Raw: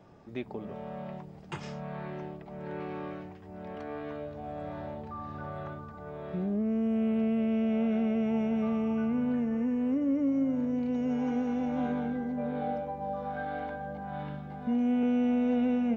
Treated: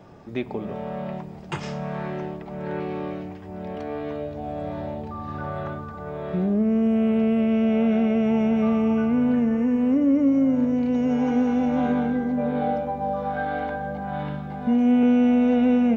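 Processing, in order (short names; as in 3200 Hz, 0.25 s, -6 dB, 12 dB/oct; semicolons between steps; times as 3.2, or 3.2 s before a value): 2.79–5.28 dynamic EQ 1400 Hz, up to -6 dB, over -55 dBFS, Q 1.3; reverb RT60 2.8 s, pre-delay 33 ms, DRR 16 dB; gain +8.5 dB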